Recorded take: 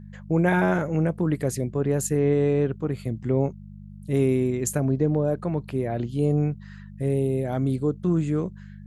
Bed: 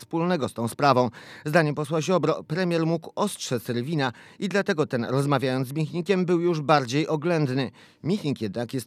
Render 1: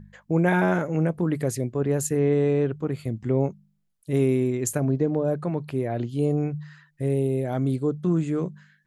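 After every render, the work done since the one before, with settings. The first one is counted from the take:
hum removal 50 Hz, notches 4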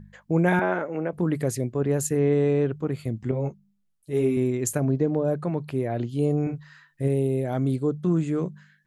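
0:00.59–0:01.13: band-pass filter 320–2,900 Hz
0:03.31–0:04.37: string-ensemble chorus
0:06.43–0:07.08: double-tracking delay 37 ms −6 dB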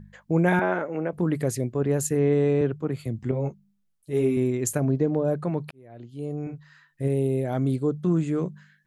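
0:02.61–0:03.19: multiband upward and downward expander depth 40%
0:05.71–0:07.28: fade in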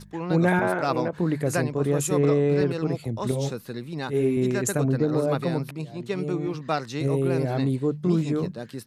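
mix in bed −7 dB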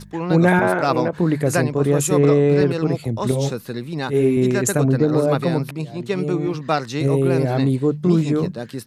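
level +6 dB

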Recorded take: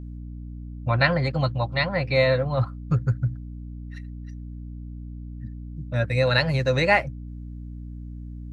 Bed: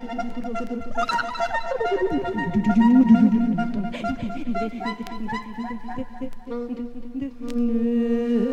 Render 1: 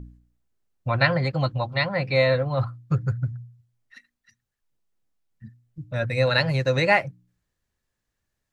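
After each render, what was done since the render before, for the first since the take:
hum removal 60 Hz, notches 5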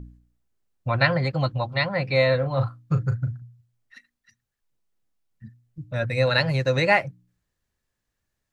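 0:02.39–0:03.42: double-tracking delay 37 ms −9.5 dB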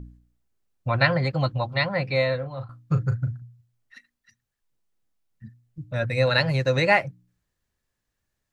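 0:01.96–0:02.69: fade out, to −15.5 dB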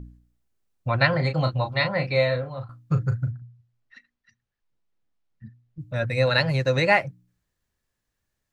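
0:01.10–0:02.58: double-tracking delay 32 ms −7 dB
0:03.30–0:05.80: high-frequency loss of the air 120 metres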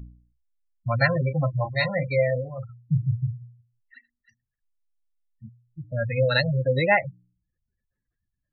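gate on every frequency bin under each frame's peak −15 dB strong
notch filter 960 Hz, Q 8.8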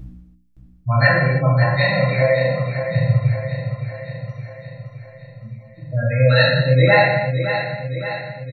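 on a send: repeating echo 567 ms, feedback 58%, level −9 dB
on the sum: reverb whose tail is shaped and stops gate 360 ms falling, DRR −6.5 dB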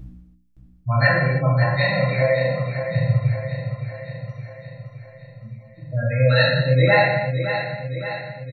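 level −2.5 dB

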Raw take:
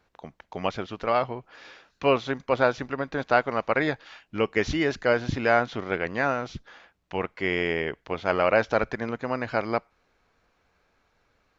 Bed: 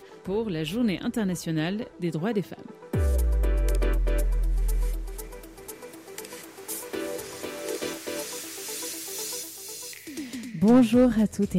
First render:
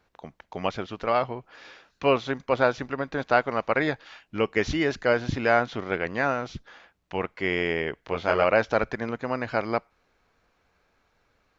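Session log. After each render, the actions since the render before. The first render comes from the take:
0:08.01–0:08.44: double-tracking delay 24 ms −4 dB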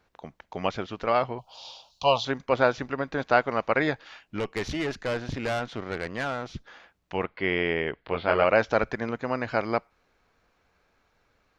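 0:01.38–0:02.25: drawn EQ curve 120 Hz 0 dB, 180 Hz −6 dB, 380 Hz −16 dB, 590 Hz +3 dB, 930 Hz +8 dB, 1,800 Hz −29 dB, 3,000 Hz +8 dB, 4,600 Hz +12 dB, 7,400 Hz +7 dB
0:04.39–0:06.54: tube saturation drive 24 dB, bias 0.6
0:07.24–0:08.49: Butterworth low-pass 4,600 Hz 48 dB per octave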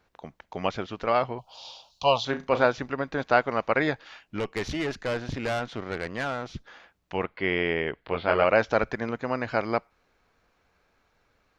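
0:02.25–0:02.66: flutter between parallel walls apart 6 metres, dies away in 0.22 s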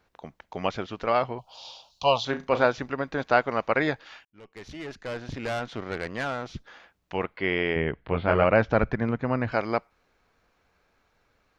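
0:04.25–0:05.78: fade in
0:07.76–0:09.52: bass and treble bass +10 dB, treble −12 dB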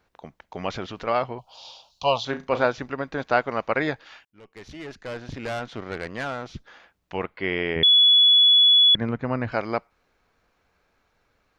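0:00.56–0:01.08: transient designer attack −3 dB, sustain +5 dB
0:07.83–0:08.95: beep over 3,400 Hz −12 dBFS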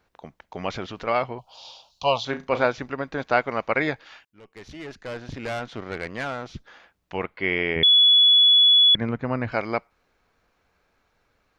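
dynamic equaliser 2,200 Hz, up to +7 dB, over −46 dBFS, Q 7.6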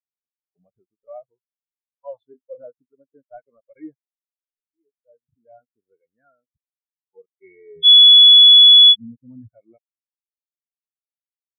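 leveller curve on the samples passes 5
every bin expanded away from the loudest bin 4 to 1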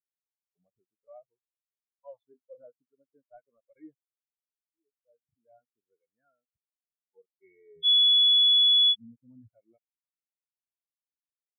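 level −12.5 dB

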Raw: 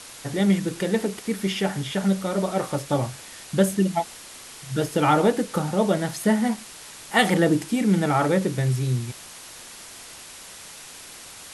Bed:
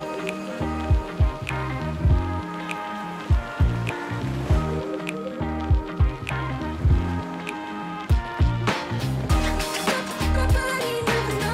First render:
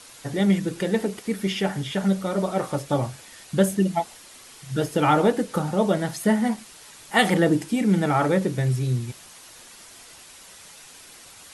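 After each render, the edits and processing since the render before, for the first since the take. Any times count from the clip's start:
broadband denoise 6 dB, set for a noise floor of −43 dBFS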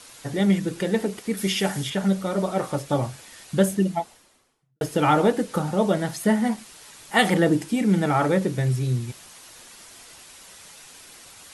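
0:01.37–0:01.90: high-shelf EQ 4,400 Hz +11 dB
0:03.66–0:04.81: fade out and dull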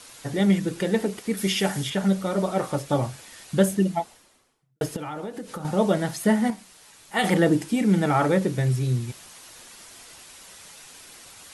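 0:04.96–0:05.65: downward compressor, threshold −31 dBFS
0:06.50–0:07.24: tuned comb filter 94 Hz, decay 0.32 s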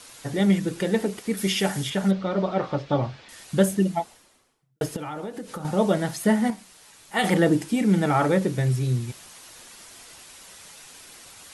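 0:02.11–0:03.29: low-pass filter 4,500 Hz 24 dB per octave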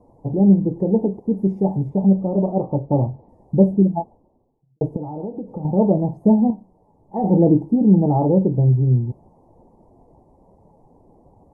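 elliptic low-pass filter 900 Hz, stop band 40 dB
low-shelf EQ 400 Hz +9.5 dB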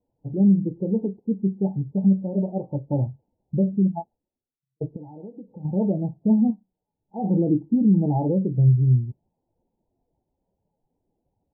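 brickwall limiter −9.5 dBFS, peak gain reduction 7 dB
every bin expanded away from the loudest bin 1.5 to 1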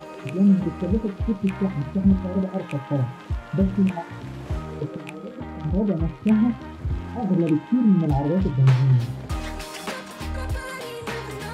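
mix in bed −8 dB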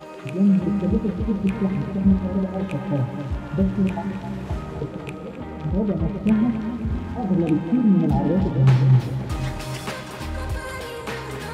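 tape delay 260 ms, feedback 68%, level −8 dB, low-pass 2,400 Hz
four-comb reverb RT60 3.7 s, combs from 31 ms, DRR 11 dB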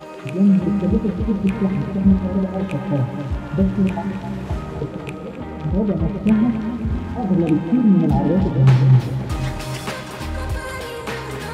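level +3 dB

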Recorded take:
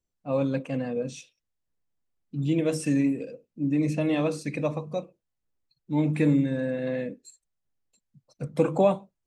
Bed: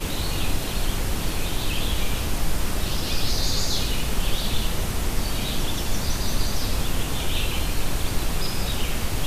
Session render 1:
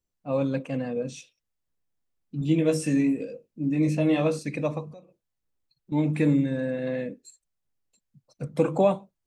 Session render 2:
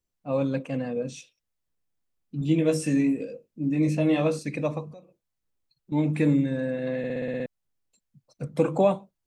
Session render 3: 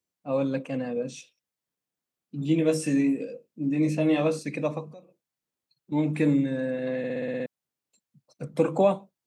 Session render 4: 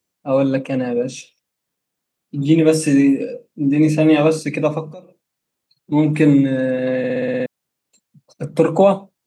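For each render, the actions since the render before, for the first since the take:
0:02.39–0:04.39: double-tracking delay 19 ms −5 dB; 0:04.91–0:05.92: downward compressor 4 to 1, threshold −46 dBFS
0:06.98: stutter in place 0.06 s, 8 plays
high-pass filter 150 Hz 12 dB per octave
level +10 dB; brickwall limiter −2 dBFS, peak gain reduction 2.5 dB

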